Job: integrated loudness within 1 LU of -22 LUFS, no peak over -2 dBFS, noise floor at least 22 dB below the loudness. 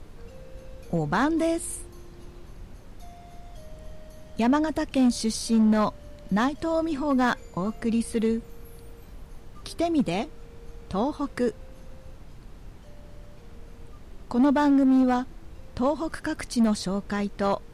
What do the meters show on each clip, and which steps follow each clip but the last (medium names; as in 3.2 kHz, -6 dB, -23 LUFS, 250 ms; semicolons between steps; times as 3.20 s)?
clipped samples 1.0%; clipping level -16.0 dBFS; noise floor -46 dBFS; noise floor target -48 dBFS; loudness -25.5 LUFS; peak level -16.0 dBFS; loudness target -22.0 LUFS
-> clip repair -16 dBFS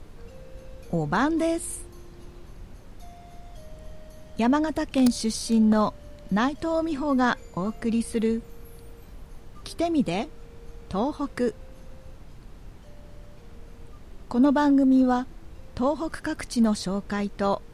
clipped samples 0.0%; noise floor -46 dBFS; noise floor target -47 dBFS
-> noise print and reduce 6 dB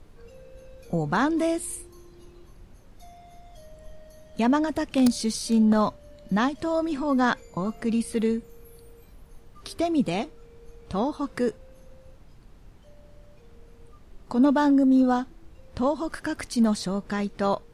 noise floor -51 dBFS; loudness -25.0 LUFS; peak level -7.0 dBFS; loudness target -22.0 LUFS
-> trim +3 dB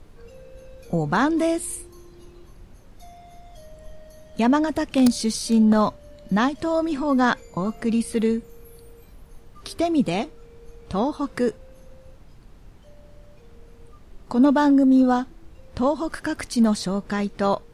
loudness -22.0 LUFS; peak level -4.0 dBFS; noise floor -48 dBFS